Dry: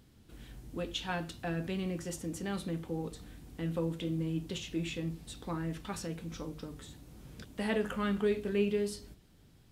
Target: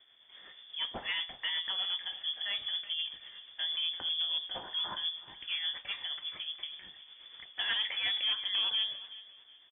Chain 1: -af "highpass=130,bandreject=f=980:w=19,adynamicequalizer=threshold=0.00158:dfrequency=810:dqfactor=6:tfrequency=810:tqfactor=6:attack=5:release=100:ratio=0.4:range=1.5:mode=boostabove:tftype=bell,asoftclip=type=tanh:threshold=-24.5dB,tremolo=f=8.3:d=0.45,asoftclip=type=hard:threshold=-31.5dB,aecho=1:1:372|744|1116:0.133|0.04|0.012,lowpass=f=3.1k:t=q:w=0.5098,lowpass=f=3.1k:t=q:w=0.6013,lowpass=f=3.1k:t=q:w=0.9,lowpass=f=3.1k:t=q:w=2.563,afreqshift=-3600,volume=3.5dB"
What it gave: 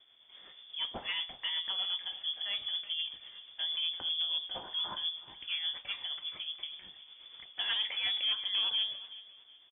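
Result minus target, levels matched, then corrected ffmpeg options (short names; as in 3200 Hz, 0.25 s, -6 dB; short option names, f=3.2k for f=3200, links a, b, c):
soft clip: distortion +9 dB; 2000 Hz band -3.0 dB
-af "highpass=130,equalizer=f=1.8k:w=3.7:g=7,bandreject=f=980:w=19,adynamicequalizer=threshold=0.00158:dfrequency=810:dqfactor=6:tfrequency=810:tqfactor=6:attack=5:release=100:ratio=0.4:range=1.5:mode=boostabove:tftype=bell,asoftclip=type=tanh:threshold=-18dB,tremolo=f=8.3:d=0.45,asoftclip=type=hard:threshold=-31.5dB,aecho=1:1:372|744|1116:0.133|0.04|0.012,lowpass=f=3.1k:t=q:w=0.5098,lowpass=f=3.1k:t=q:w=0.6013,lowpass=f=3.1k:t=q:w=0.9,lowpass=f=3.1k:t=q:w=2.563,afreqshift=-3600,volume=3.5dB"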